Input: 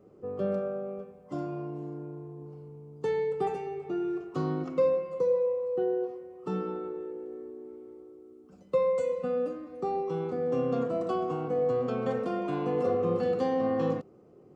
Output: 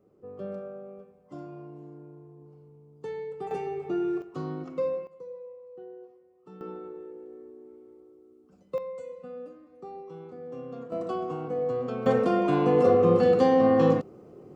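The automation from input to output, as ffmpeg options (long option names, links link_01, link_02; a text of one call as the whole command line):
ffmpeg -i in.wav -af "asetnsamples=nb_out_samples=441:pad=0,asendcmd='3.51 volume volume 3dB;4.22 volume volume -4dB;5.07 volume volume -16dB;6.61 volume volume -4.5dB;8.78 volume volume -11dB;10.92 volume volume -1.5dB;12.06 volume volume 7.5dB',volume=-7dB" out.wav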